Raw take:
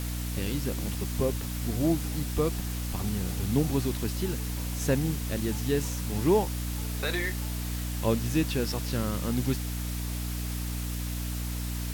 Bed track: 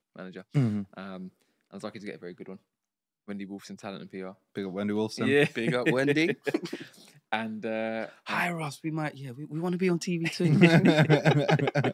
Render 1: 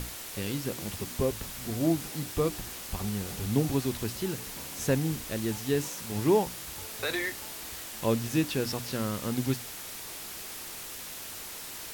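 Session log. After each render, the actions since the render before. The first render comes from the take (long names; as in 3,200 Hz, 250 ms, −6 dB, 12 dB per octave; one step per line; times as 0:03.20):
mains-hum notches 60/120/180/240/300 Hz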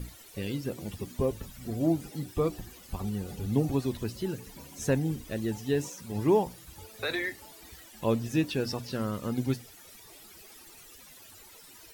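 broadband denoise 15 dB, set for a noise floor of −41 dBFS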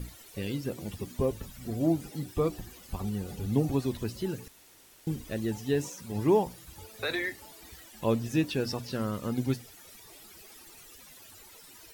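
0:04.48–0:05.07: fill with room tone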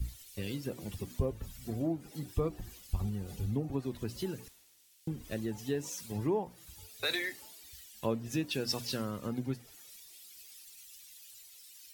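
downward compressor 4 to 1, threshold −33 dBFS, peak gain reduction 12.5 dB
multiband upward and downward expander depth 100%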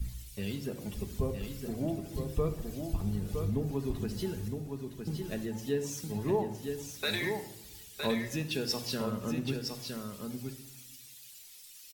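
single-tap delay 963 ms −5.5 dB
rectangular room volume 2,300 cubic metres, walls furnished, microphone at 1.4 metres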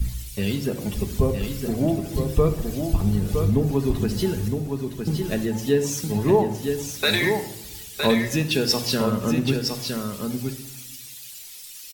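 level +11.5 dB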